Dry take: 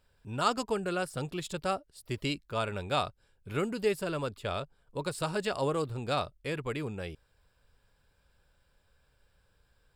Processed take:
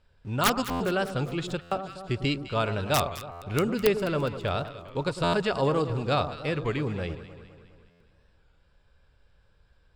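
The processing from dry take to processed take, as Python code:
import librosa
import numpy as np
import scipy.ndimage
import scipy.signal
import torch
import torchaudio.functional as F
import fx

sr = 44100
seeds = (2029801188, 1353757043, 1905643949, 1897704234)

p1 = fx.quant_dither(x, sr, seeds[0], bits=8, dither='none')
p2 = x + F.gain(torch.from_numpy(p1), -11.5).numpy()
p3 = scipy.signal.sosfilt(scipy.signal.butter(2, 5200.0, 'lowpass', fs=sr, output='sos'), p2)
p4 = (np.mod(10.0 ** (16.0 / 20.0) * p3 + 1.0, 2.0) - 1.0) / 10.0 ** (16.0 / 20.0)
p5 = fx.low_shelf(p4, sr, hz=160.0, db=4.5)
p6 = fx.echo_alternate(p5, sr, ms=103, hz=1200.0, feedback_pct=73, wet_db=-10.5)
p7 = fx.buffer_glitch(p6, sr, at_s=(0.7, 1.61, 3.31, 5.23, 7.9), block=512, repeats=8)
p8 = fx.record_warp(p7, sr, rpm=33.33, depth_cents=100.0)
y = F.gain(torch.from_numpy(p8), 2.5).numpy()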